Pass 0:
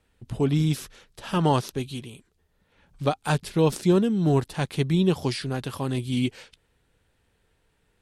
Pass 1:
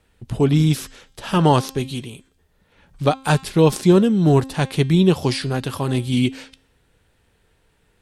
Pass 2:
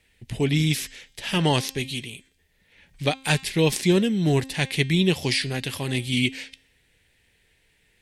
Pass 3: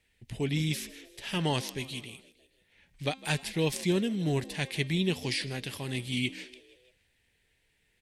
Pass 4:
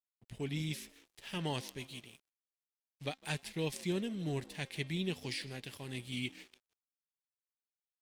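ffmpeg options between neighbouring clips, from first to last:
-af "bandreject=f=266.2:t=h:w=4,bandreject=f=532.4:t=h:w=4,bandreject=f=798.6:t=h:w=4,bandreject=f=1.0648k:t=h:w=4,bandreject=f=1.331k:t=h:w=4,bandreject=f=1.5972k:t=h:w=4,bandreject=f=1.8634k:t=h:w=4,bandreject=f=2.1296k:t=h:w=4,bandreject=f=2.3958k:t=h:w=4,bandreject=f=2.662k:t=h:w=4,bandreject=f=2.9282k:t=h:w=4,bandreject=f=3.1944k:t=h:w=4,bandreject=f=3.4606k:t=h:w=4,bandreject=f=3.7268k:t=h:w=4,bandreject=f=3.993k:t=h:w=4,bandreject=f=4.2592k:t=h:w=4,bandreject=f=4.5254k:t=h:w=4,bandreject=f=4.7916k:t=h:w=4,bandreject=f=5.0578k:t=h:w=4,bandreject=f=5.324k:t=h:w=4,bandreject=f=5.5902k:t=h:w=4,bandreject=f=5.8564k:t=h:w=4,bandreject=f=6.1226k:t=h:w=4,bandreject=f=6.3888k:t=h:w=4,bandreject=f=6.655k:t=h:w=4,bandreject=f=6.9212k:t=h:w=4,bandreject=f=7.1874k:t=h:w=4,bandreject=f=7.4536k:t=h:w=4,bandreject=f=7.7198k:t=h:w=4,bandreject=f=7.986k:t=h:w=4,bandreject=f=8.2522k:t=h:w=4,bandreject=f=8.5184k:t=h:w=4,volume=6.5dB"
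-af "highshelf=f=1.6k:t=q:w=3:g=7,volume=-6dB"
-filter_complex "[0:a]asplit=5[a][b][c][d][e];[b]adelay=157,afreqshift=63,volume=-20dB[f];[c]adelay=314,afreqshift=126,volume=-25dB[g];[d]adelay=471,afreqshift=189,volume=-30.1dB[h];[e]adelay=628,afreqshift=252,volume=-35.1dB[i];[a][f][g][h][i]amix=inputs=5:normalize=0,volume=-8dB"
-af "aeval=exprs='sgn(val(0))*max(abs(val(0))-0.00299,0)':c=same,volume=-7.5dB"

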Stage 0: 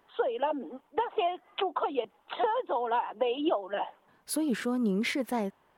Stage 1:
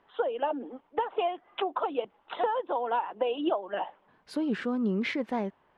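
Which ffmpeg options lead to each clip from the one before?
-af "lowpass=3.5k"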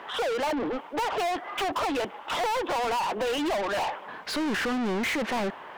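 -filter_complex "[0:a]asplit=2[a][b];[b]highpass=f=720:p=1,volume=38dB,asoftclip=type=tanh:threshold=-16.5dB[c];[a][c]amix=inputs=2:normalize=0,lowpass=f=4.7k:p=1,volume=-6dB,volume=-5dB"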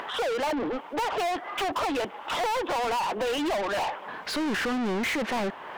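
-af "acompressor=mode=upward:threshold=-32dB:ratio=2.5"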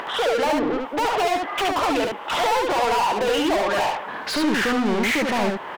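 -af "aecho=1:1:71:0.708,volume=5dB"

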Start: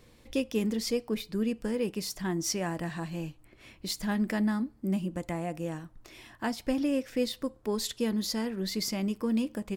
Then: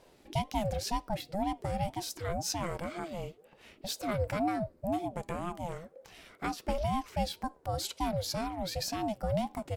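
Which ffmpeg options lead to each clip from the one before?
-af "aeval=exprs='val(0)*sin(2*PI*410*n/s+410*0.3/2*sin(2*PI*2*n/s))':c=same"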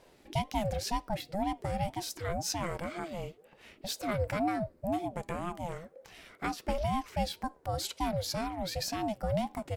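-af "equalizer=f=1.9k:t=o:w=0.77:g=2.5"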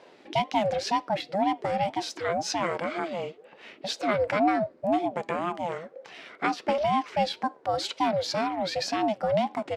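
-af "highpass=260,lowpass=4.3k,volume=8.5dB"

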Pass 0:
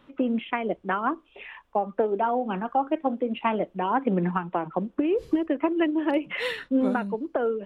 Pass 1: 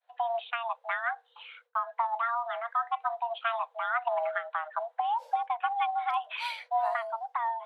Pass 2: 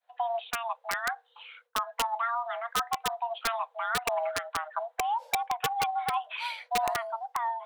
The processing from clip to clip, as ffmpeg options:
-af "agate=range=-33dB:threshold=-48dB:ratio=3:detection=peak,afreqshift=460,volume=-5.5dB"
-af "aeval=exprs='(mod(10*val(0)+1,2)-1)/10':c=same"

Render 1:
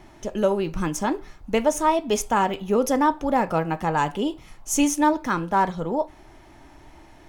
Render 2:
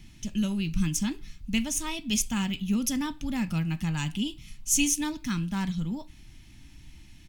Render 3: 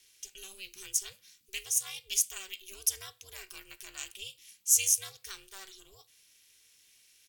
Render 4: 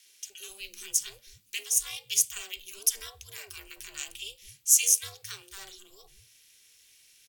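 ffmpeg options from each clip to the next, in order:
-af "firequalizer=gain_entry='entry(210,0);entry(440,-28);entry(2600,0)':delay=0.05:min_phase=1,volume=2dB"
-af "aderivative,aeval=exprs='val(0)*sin(2*PI*190*n/s)':c=same,volume=4.5dB"
-filter_complex "[0:a]acrossover=split=230|950[a][b][c];[b]adelay=50[d];[a]adelay=250[e];[e][d][c]amix=inputs=3:normalize=0,volume=3.5dB"

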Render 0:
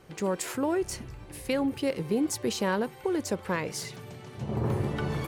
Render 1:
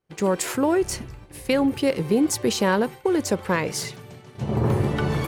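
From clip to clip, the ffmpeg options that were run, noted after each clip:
-af "agate=range=-33dB:threshold=-37dB:ratio=3:detection=peak,volume=7dB"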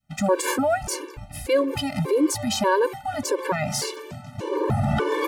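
-af "alimiter=limit=-20.5dB:level=0:latency=1:release=73,adynamicequalizer=threshold=0.00794:dfrequency=780:dqfactor=0.82:tfrequency=780:tqfactor=0.82:attack=5:release=100:ratio=0.375:range=3.5:mode=boostabove:tftype=bell,afftfilt=real='re*gt(sin(2*PI*1.7*pts/sr)*(1-2*mod(floor(b*sr/1024/300),2)),0)':imag='im*gt(sin(2*PI*1.7*pts/sr)*(1-2*mod(floor(b*sr/1024/300),2)),0)':win_size=1024:overlap=0.75,volume=7dB"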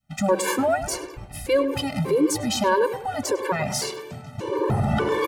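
-filter_complex "[0:a]asplit=2[a][b];[b]adelay=102,lowpass=f=2.4k:p=1,volume=-11dB,asplit=2[c][d];[d]adelay=102,lowpass=f=2.4k:p=1,volume=0.39,asplit=2[e][f];[f]adelay=102,lowpass=f=2.4k:p=1,volume=0.39,asplit=2[g][h];[h]adelay=102,lowpass=f=2.4k:p=1,volume=0.39[i];[a][c][e][g][i]amix=inputs=5:normalize=0"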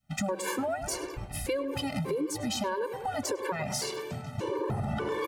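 -af "acompressor=threshold=-29dB:ratio=6"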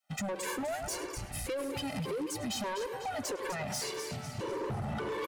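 -filter_complex "[0:a]acrossover=split=440|1300[a][b][c];[a]aeval=exprs='sgn(val(0))*max(abs(val(0))-0.00224,0)':c=same[d];[c]aecho=1:1:249|498|747|996|1245:0.355|0.156|0.0687|0.0302|0.0133[e];[d][b][e]amix=inputs=3:normalize=0,asoftclip=type=tanh:threshold=-31dB"

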